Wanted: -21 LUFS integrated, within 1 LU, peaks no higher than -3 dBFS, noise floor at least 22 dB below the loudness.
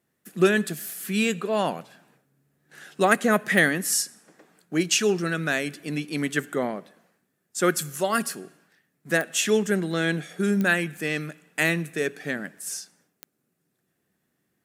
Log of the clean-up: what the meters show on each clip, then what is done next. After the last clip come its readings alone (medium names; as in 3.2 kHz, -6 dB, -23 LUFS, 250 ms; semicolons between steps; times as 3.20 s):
clicks found 4; loudness -25.0 LUFS; peak level -2.5 dBFS; loudness target -21.0 LUFS
-> de-click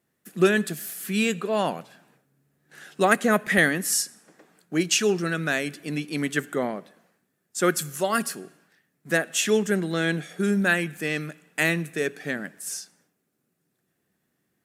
clicks found 0; loudness -25.0 LUFS; peak level -2.5 dBFS; loudness target -21.0 LUFS
-> trim +4 dB; peak limiter -3 dBFS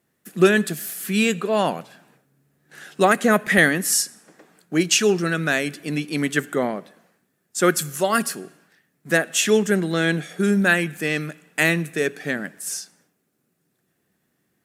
loudness -21.0 LUFS; peak level -3.0 dBFS; noise floor -72 dBFS